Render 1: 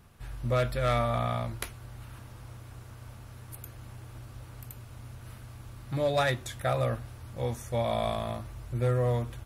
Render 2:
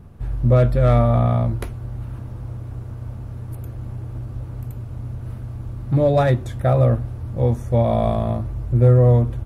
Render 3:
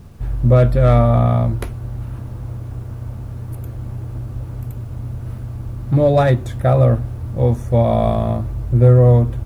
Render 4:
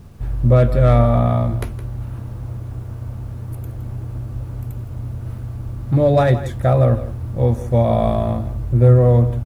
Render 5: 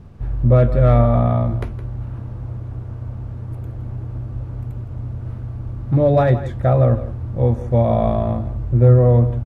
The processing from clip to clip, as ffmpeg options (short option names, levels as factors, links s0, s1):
-af "tiltshelf=f=970:g=10,volume=1.88"
-af "acrusher=bits=9:mix=0:aa=0.000001,volume=1.41"
-af "aecho=1:1:165:0.211,volume=0.891"
-af "aemphasis=mode=reproduction:type=75fm,volume=0.891"